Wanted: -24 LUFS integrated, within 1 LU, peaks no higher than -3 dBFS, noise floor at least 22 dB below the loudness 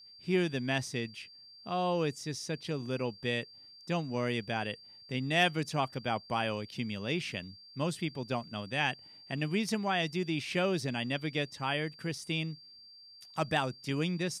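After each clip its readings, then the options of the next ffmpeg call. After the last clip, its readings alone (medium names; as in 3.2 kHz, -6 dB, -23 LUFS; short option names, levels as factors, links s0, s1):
steady tone 4.7 kHz; tone level -52 dBFS; loudness -33.5 LUFS; peak level -16.0 dBFS; loudness target -24.0 LUFS
-> -af "bandreject=f=4700:w=30"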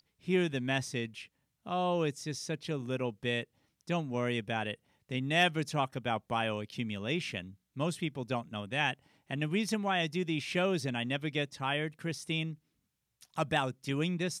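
steady tone not found; loudness -33.5 LUFS; peak level -16.0 dBFS; loudness target -24.0 LUFS
-> -af "volume=2.99"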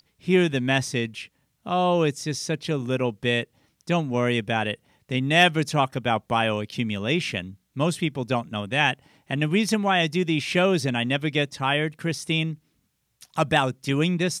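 loudness -24.0 LUFS; peak level -6.5 dBFS; noise floor -72 dBFS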